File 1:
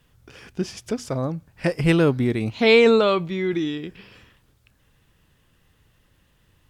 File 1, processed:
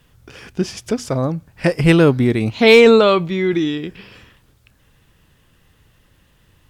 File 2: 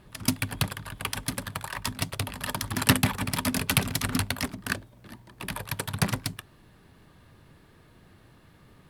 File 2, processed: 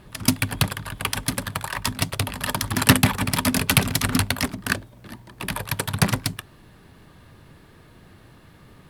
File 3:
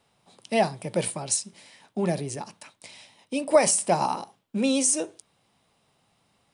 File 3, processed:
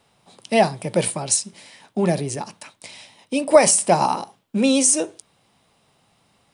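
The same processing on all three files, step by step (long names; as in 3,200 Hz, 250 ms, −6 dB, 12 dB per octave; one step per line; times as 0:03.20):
gain into a clipping stage and back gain 7.5 dB
level +6 dB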